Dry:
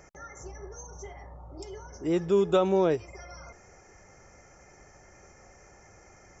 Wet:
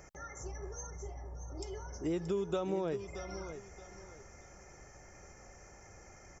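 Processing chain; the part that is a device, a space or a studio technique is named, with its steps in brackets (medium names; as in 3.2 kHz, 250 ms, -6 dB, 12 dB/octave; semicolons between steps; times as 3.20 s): 0.90–1.50 s: peaking EQ 2.6 kHz -13 dB 2.5 oct; ASMR close-microphone chain (bass shelf 110 Hz +4.5 dB; compression 6:1, threshold -29 dBFS, peak gain reduction 10.5 dB; treble shelf 6.9 kHz +5 dB); feedback delay 627 ms, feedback 28%, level -11 dB; trim -2.5 dB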